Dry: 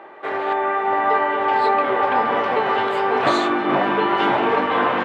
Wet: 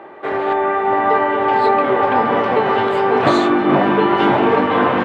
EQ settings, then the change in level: bass shelf 380 Hz +10.5 dB; +1.0 dB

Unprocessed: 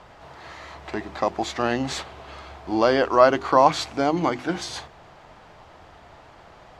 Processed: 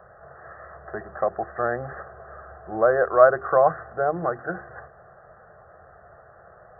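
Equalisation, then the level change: high-pass 110 Hz 6 dB/octave; brick-wall FIR low-pass 2 kHz; static phaser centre 1.4 kHz, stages 8; +2.0 dB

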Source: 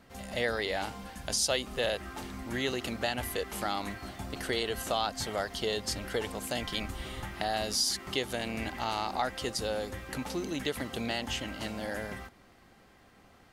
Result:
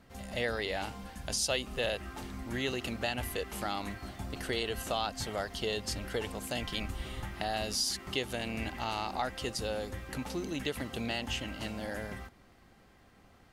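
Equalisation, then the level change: dynamic bell 2.7 kHz, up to +5 dB, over -52 dBFS, Q 7.1; bass shelf 160 Hz +5.5 dB; -3.0 dB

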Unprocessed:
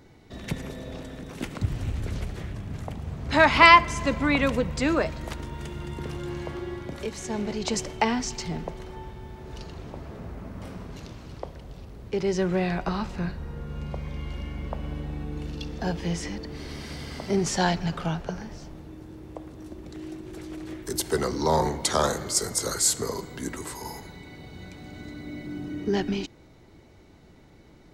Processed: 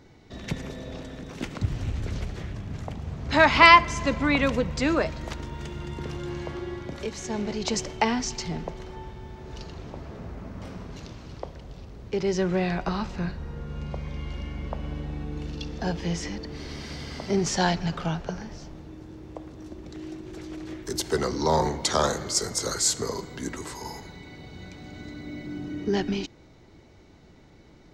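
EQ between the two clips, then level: resonant high shelf 7.9 kHz -6.5 dB, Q 1.5; 0.0 dB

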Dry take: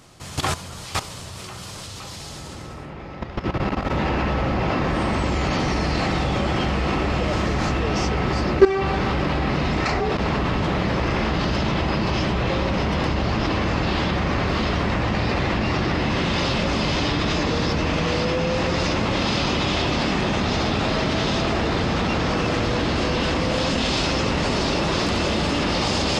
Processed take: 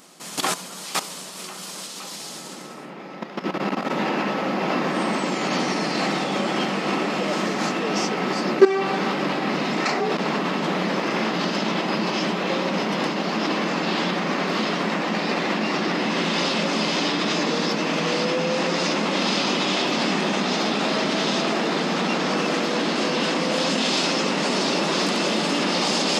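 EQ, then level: brick-wall FIR high-pass 160 Hz; treble shelf 7.7 kHz +9 dB; 0.0 dB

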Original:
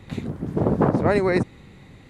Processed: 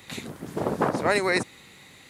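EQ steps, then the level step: tilt EQ +4 dB/octave; 0.0 dB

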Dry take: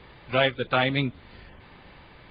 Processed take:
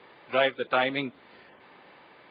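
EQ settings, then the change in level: high-pass 320 Hz 12 dB/octave; treble shelf 3.7 kHz -9.5 dB; 0.0 dB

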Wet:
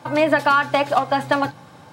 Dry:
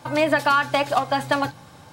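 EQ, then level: high-pass 120 Hz; treble shelf 3.6 kHz -7.5 dB; +3.0 dB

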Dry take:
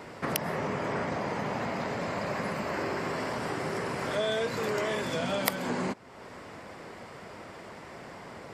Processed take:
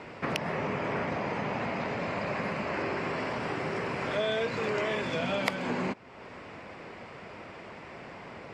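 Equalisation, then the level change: distance through air 95 m; peaking EQ 2.5 kHz +6.5 dB 0.44 oct; 0.0 dB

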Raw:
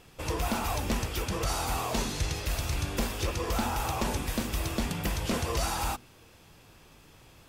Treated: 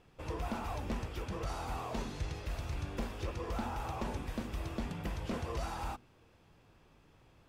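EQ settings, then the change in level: treble shelf 2.7 kHz -8.5 dB; treble shelf 8.1 kHz -8 dB; -7.0 dB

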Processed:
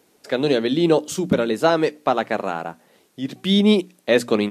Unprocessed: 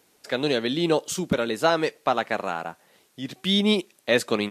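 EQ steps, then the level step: peaking EQ 270 Hz +7 dB 2.8 oct; hum notches 60/120/180/240/300 Hz; 0.0 dB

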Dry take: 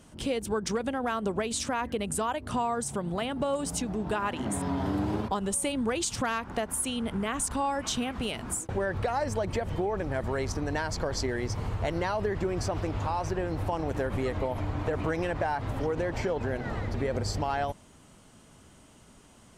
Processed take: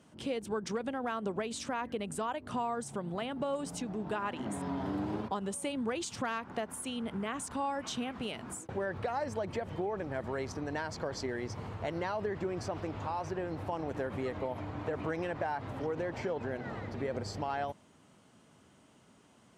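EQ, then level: high-pass 120 Hz 12 dB/octave; treble shelf 6.7 kHz -9.5 dB; -5.0 dB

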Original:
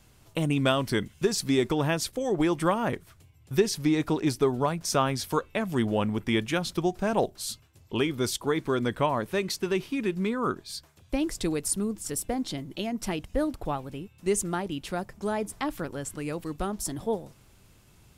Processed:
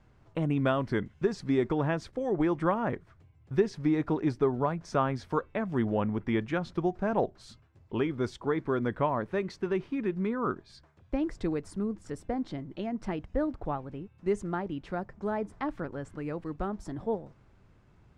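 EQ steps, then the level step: distance through air 110 m; high-order bell 5.8 kHz -9.5 dB 2.7 oct; -2.0 dB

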